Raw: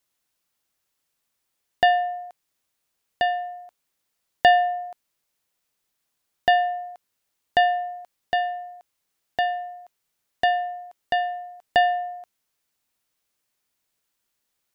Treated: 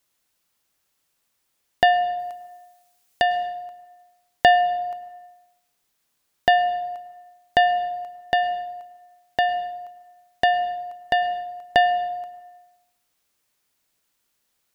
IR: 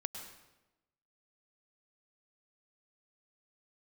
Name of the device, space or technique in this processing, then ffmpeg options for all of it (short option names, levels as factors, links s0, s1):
compressed reverb return: -filter_complex "[0:a]asettb=1/sr,asplit=3[s0][s1][s2];[s0]atrim=end=2.194[s3];[s1]atrim=start=2.19:end=3.22,asetpts=PTS-STARTPTS,afade=t=in:d=0.004:c=qsin,afade=t=out:st=1.026:d=0.004:c=qsin,highshelf=f=3500:g=8[s4];[s2]atrim=start=3.216[s5];[s3][s4]acrossfade=d=0.004:c1=hsin:c2=qsin[s6];[s6][s5]acrossfade=d=0.004:c1=qsin:c2=hsin,asplit=2[s7][s8];[1:a]atrim=start_sample=2205[s9];[s8][s9]afir=irnorm=-1:irlink=0,acompressor=threshold=0.0562:ratio=10,volume=1.06[s10];[s7][s10]amix=inputs=2:normalize=0,volume=0.891"